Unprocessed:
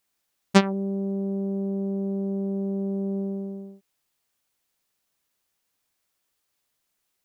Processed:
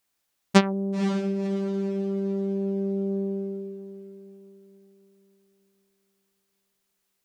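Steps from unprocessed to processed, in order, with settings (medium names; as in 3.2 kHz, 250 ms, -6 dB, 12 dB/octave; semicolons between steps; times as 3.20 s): echo that smears into a reverb 515 ms, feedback 44%, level -11 dB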